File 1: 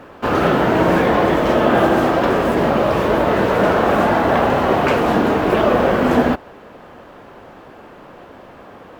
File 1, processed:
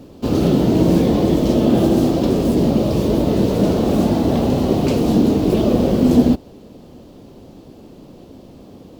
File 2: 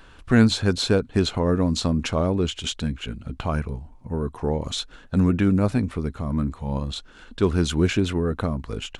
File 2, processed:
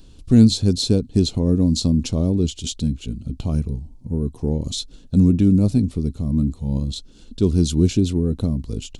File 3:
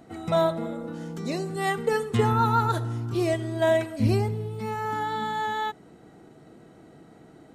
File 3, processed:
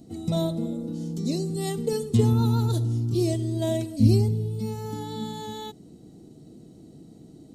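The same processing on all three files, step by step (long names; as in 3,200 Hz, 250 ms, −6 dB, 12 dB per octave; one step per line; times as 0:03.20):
drawn EQ curve 270 Hz 0 dB, 1,600 Hz −25 dB, 4,400 Hz −1 dB
level +5 dB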